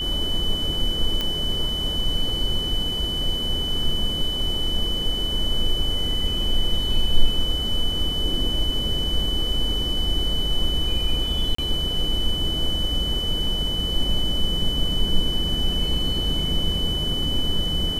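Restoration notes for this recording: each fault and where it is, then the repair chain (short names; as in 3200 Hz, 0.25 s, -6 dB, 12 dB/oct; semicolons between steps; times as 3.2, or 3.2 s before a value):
tone 3000 Hz -25 dBFS
1.21 pop -11 dBFS
11.55–11.58 gap 34 ms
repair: de-click; notch 3000 Hz, Q 30; interpolate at 11.55, 34 ms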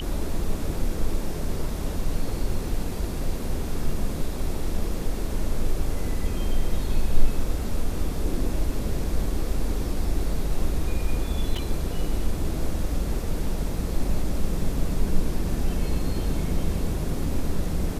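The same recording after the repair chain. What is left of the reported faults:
none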